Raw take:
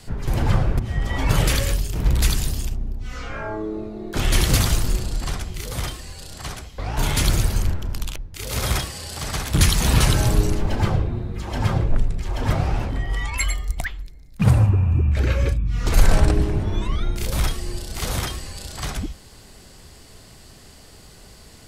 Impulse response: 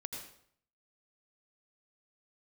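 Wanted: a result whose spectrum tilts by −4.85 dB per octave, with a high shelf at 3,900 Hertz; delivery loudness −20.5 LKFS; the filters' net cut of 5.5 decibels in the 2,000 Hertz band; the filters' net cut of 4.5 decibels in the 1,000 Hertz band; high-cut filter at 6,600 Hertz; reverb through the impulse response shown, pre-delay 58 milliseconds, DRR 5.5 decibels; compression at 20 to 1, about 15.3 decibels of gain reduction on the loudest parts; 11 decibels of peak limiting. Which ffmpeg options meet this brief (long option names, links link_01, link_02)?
-filter_complex "[0:a]lowpass=6600,equalizer=frequency=1000:width_type=o:gain=-4.5,equalizer=frequency=2000:width_type=o:gain=-6.5,highshelf=frequency=3900:gain=3.5,acompressor=threshold=-23dB:ratio=20,alimiter=level_in=1.5dB:limit=-24dB:level=0:latency=1,volume=-1.5dB,asplit=2[link_01][link_02];[1:a]atrim=start_sample=2205,adelay=58[link_03];[link_02][link_03]afir=irnorm=-1:irlink=0,volume=-4.5dB[link_04];[link_01][link_04]amix=inputs=2:normalize=0,volume=14dB"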